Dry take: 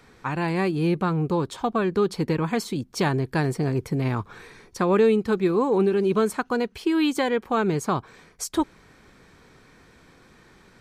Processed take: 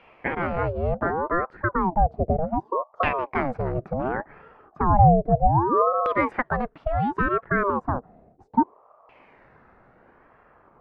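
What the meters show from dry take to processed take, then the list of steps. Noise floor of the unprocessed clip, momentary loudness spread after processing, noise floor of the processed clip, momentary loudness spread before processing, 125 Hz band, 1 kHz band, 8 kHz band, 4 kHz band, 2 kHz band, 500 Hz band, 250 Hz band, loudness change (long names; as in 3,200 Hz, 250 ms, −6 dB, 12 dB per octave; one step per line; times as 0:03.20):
−55 dBFS, 9 LU, −57 dBFS, 8 LU, +1.0 dB, +7.0 dB, below −35 dB, below −10 dB, +2.5 dB, −2.5 dB, −4.5 dB, 0.0 dB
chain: auto-filter low-pass saw down 0.33 Hz 280–1,700 Hz
ring modulator whose carrier an LFO sweeps 570 Hz, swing 60%, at 0.67 Hz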